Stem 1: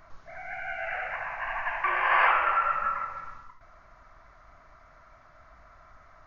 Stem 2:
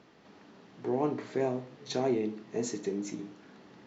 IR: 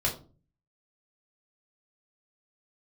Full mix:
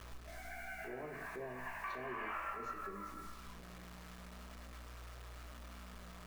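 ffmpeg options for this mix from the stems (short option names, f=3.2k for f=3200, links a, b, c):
-filter_complex "[0:a]aeval=exprs='val(0)+0.00708*(sin(2*PI*60*n/s)+sin(2*PI*2*60*n/s)/2+sin(2*PI*3*60*n/s)/3+sin(2*PI*4*60*n/s)/4+sin(2*PI*5*60*n/s)/5)':c=same,flanger=delay=19:depth=3.5:speed=0.39,acrusher=bits=7:mix=0:aa=0.000001,volume=-4dB,asplit=2[a][b];[b]volume=-16.5dB[c];[1:a]lowpass=3.5k,volume=-10.5dB,asplit=3[d][e][f];[e]volume=-9dB[g];[f]apad=whole_len=276093[h];[a][h]sidechaincompress=threshold=-46dB:ratio=8:attack=6.6:release=154[i];[2:a]atrim=start_sample=2205[j];[c][g]amix=inputs=2:normalize=0[k];[k][j]afir=irnorm=-1:irlink=0[l];[i][d][l]amix=inputs=3:normalize=0,lowshelf=f=270:g=-4.5,acompressor=threshold=-49dB:ratio=2"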